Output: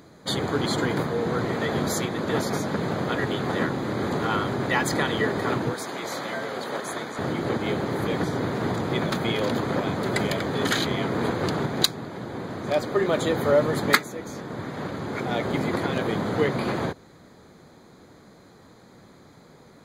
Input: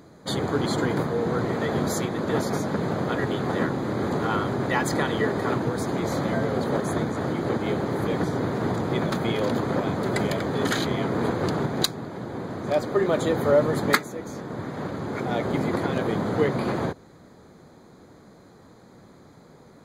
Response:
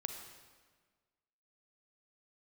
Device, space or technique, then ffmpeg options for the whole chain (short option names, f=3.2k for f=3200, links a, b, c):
presence and air boost: -filter_complex "[0:a]asettb=1/sr,asplit=3[a][b][c];[a]atrim=end=5.744[d];[b]atrim=start=5.74:end=7.19,asetpts=PTS-STARTPTS,afade=t=in:d=0.004:c=qsin,afade=t=out:st=1.446:d=0.004:c=qsin,highpass=f=730:p=1[e];[c]atrim=start=7.186[f];[d][e]acrossfade=d=0.004:c1=hsin:c2=qsin[g];[g][f]acrossfade=d=0.004:c1=qsin:c2=hsin,equalizer=f=2.9k:t=o:w=1.8:g=5,highshelf=f=9.5k:g=4.5,volume=-1dB"